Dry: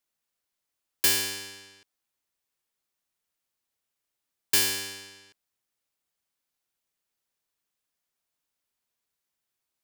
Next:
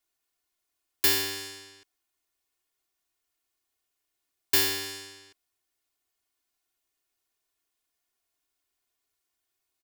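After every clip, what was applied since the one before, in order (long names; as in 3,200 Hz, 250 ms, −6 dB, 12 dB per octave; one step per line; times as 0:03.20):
dynamic equaliser 8,300 Hz, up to −7 dB, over −40 dBFS, Q 1.1
comb filter 2.8 ms, depth 80%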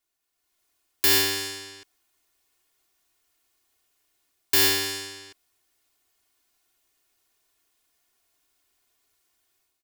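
automatic gain control gain up to 10 dB
brickwall limiter −9 dBFS, peak gain reduction 6.5 dB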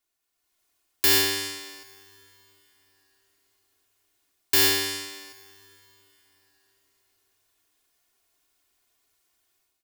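dense smooth reverb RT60 4.3 s, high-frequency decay 0.85×, DRR 19 dB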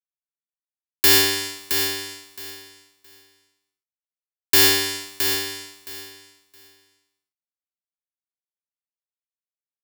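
dead-zone distortion −41 dBFS
repeating echo 668 ms, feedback 19%, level −7.5 dB
level +5.5 dB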